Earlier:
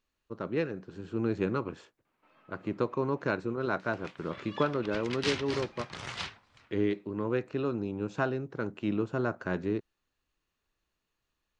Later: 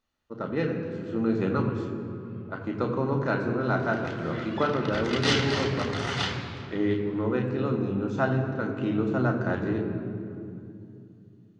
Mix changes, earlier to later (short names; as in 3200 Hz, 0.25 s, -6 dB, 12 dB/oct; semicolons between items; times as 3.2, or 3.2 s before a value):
second sound +3.5 dB; reverb: on, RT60 2.7 s